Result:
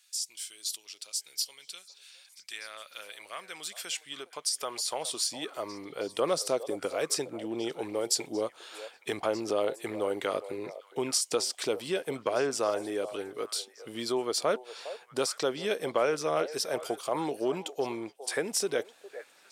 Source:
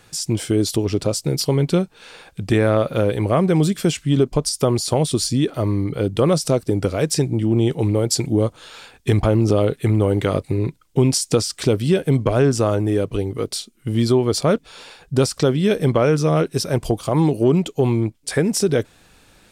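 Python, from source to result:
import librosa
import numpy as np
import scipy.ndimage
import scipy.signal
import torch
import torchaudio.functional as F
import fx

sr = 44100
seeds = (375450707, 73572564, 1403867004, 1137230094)

y = fx.filter_sweep_highpass(x, sr, from_hz=3500.0, to_hz=520.0, start_s=2.19, end_s=6.14, q=0.72)
y = fx.echo_stepped(y, sr, ms=409, hz=630.0, octaves=1.4, feedback_pct=70, wet_db=-11.0)
y = y * 10.0 ** (-6.5 / 20.0)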